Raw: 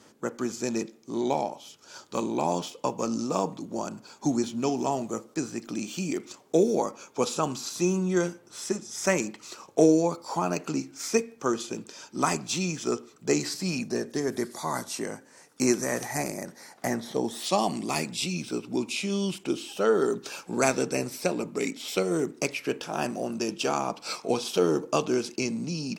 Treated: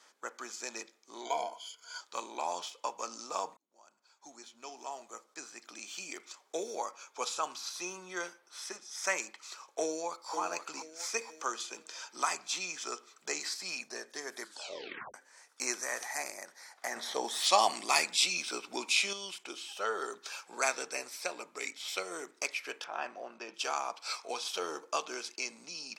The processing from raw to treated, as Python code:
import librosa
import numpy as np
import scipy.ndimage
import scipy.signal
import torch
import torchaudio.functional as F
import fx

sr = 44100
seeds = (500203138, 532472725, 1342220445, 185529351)

y = fx.ripple_eq(x, sr, per_octave=1.8, db=16, at=(1.25, 2.01))
y = fx.peak_eq(y, sr, hz=7300.0, db=-8.0, octaves=0.25, at=(7.48, 9.04))
y = fx.echo_throw(y, sr, start_s=9.85, length_s=0.49, ms=480, feedback_pct=35, wet_db=-6.5)
y = fx.band_squash(y, sr, depth_pct=40, at=(11.21, 13.42))
y = fx.lowpass(y, sr, hz=2700.0, slope=12, at=(22.84, 23.54))
y = fx.edit(y, sr, fx.fade_in_span(start_s=3.57, length_s=2.56),
    fx.tape_stop(start_s=14.41, length_s=0.73),
    fx.clip_gain(start_s=16.96, length_s=2.17, db=7.5), tone=tone)
y = scipy.signal.sosfilt(scipy.signal.butter(2, 950.0, 'highpass', fs=sr, output='sos'), y)
y = fx.high_shelf(y, sr, hz=12000.0, db=-12.0)
y = fx.notch(y, sr, hz=2800.0, q=16.0)
y = F.gain(torch.from_numpy(y), -2.0).numpy()